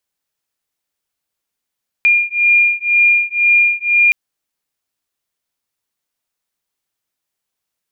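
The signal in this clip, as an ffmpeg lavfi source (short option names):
-f lavfi -i "aevalsrc='0.224*(sin(2*PI*2410*t)+sin(2*PI*2412*t))':d=2.07:s=44100"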